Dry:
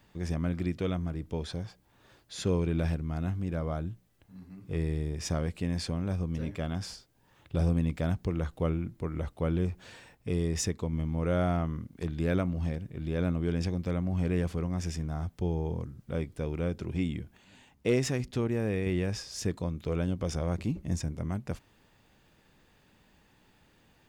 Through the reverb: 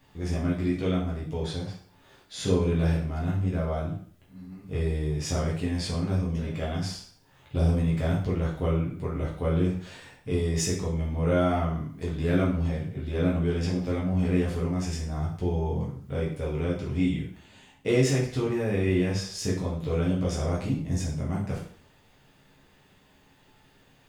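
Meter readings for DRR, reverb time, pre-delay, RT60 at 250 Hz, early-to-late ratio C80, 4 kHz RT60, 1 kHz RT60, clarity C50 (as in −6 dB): −5.5 dB, 0.55 s, 4 ms, 0.50 s, 9.0 dB, 0.50 s, 0.55 s, 5.0 dB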